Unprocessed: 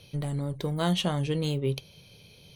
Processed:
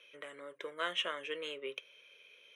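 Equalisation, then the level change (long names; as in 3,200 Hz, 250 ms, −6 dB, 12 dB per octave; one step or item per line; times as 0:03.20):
high-pass filter 540 Hz 24 dB per octave
low-pass filter 4,300 Hz 12 dB per octave
phaser with its sweep stopped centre 1,900 Hz, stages 4
+2.5 dB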